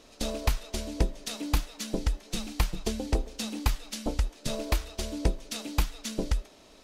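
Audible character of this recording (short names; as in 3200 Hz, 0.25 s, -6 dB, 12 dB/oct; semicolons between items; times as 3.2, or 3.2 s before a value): noise floor -55 dBFS; spectral tilt -4.5 dB/oct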